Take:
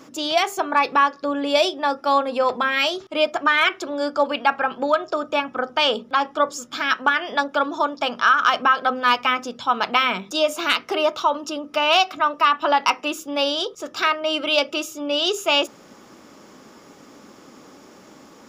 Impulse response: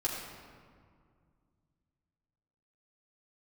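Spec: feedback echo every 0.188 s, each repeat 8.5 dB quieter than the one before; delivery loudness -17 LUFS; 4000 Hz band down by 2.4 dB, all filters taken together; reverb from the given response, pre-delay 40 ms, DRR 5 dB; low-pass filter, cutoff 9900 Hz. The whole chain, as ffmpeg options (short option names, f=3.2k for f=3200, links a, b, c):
-filter_complex "[0:a]lowpass=9.9k,equalizer=f=4k:t=o:g=-3.5,aecho=1:1:188|376|564|752:0.376|0.143|0.0543|0.0206,asplit=2[a][b];[1:a]atrim=start_sample=2205,adelay=40[c];[b][c]afir=irnorm=-1:irlink=0,volume=-10dB[d];[a][d]amix=inputs=2:normalize=0,volume=2dB"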